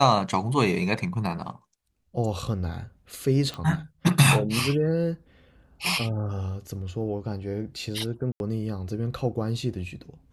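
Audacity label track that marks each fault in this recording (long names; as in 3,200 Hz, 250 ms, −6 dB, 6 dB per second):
3.540000	3.540000	click −20 dBFS
8.320000	8.400000	drop-out 81 ms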